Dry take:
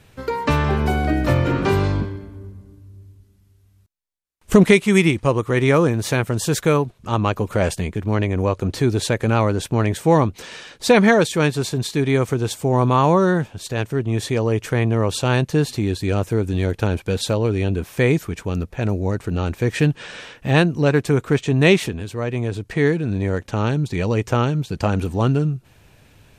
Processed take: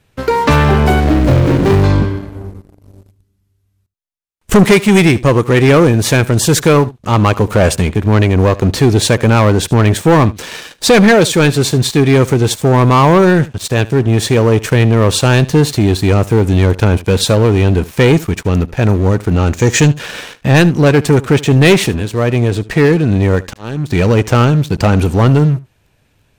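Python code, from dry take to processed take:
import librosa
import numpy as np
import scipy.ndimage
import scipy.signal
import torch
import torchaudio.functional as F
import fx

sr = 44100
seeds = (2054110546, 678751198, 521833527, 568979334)

p1 = fx.median_filter(x, sr, points=41, at=(1.0, 1.84))
p2 = fx.lowpass_res(p1, sr, hz=6800.0, q=5.5, at=(19.53, 19.99))
p3 = fx.auto_swell(p2, sr, attack_ms=732.0, at=(23.35, 23.87), fade=0.02)
p4 = fx.leveller(p3, sr, passes=3)
y = p4 + fx.echo_single(p4, sr, ms=75, db=-19.5, dry=0)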